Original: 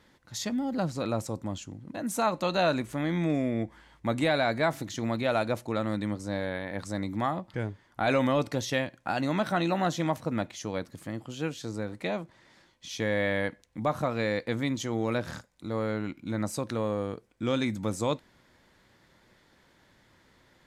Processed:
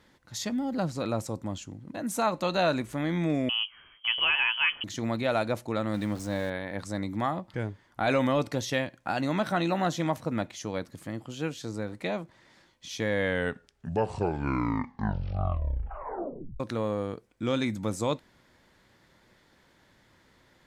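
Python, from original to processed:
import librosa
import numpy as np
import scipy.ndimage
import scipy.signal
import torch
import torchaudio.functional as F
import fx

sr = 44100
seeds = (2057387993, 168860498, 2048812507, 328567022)

y = fx.freq_invert(x, sr, carrier_hz=3200, at=(3.49, 4.84))
y = fx.zero_step(y, sr, step_db=-41.0, at=(5.94, 6.5))
y = fx.edit(y, sr, fx.tape_stop(start_s=13.08, length_s=3.52), tone=tone)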